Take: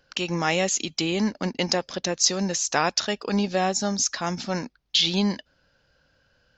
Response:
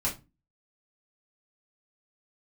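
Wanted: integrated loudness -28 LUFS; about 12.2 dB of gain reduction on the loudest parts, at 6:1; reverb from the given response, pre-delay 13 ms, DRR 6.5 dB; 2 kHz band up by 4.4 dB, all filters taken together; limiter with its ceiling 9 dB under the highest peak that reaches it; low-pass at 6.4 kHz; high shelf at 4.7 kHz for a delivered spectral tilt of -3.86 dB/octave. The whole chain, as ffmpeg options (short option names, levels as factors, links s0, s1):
-filter_complex "[0:a]lowpass=6400,equalizer=f=2000:t=o:g=7,highshelf=f=4700:g=-7,acompressor=threshold=0.0355:ratio=6,alimiter=limit=0.0708:level=0:latency=1,asplit=2[s0][s1];[1:a]atrim=start_sample=2205,adelay=13[s2];[s1][s2]afir=irnorm=-1:irlink=0,volume=0.224[s3];[s0][s3]amix=inputs=2:normalize=0,volume=1.78"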